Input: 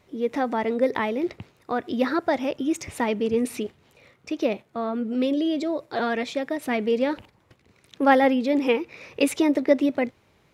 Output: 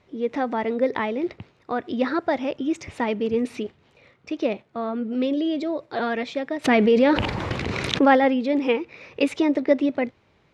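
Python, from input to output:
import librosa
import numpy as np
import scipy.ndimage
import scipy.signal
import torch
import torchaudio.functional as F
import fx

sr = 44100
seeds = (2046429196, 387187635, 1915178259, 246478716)

y = scipy.signal.sosfilt(scipy.signal.butter(2, 4900.0, 'lowpass', fs=sr, output='sos'), x)
y = fx.env_flatten(y, sr, amount_pct=70, at=(6.64, 8.15), fade=0.02)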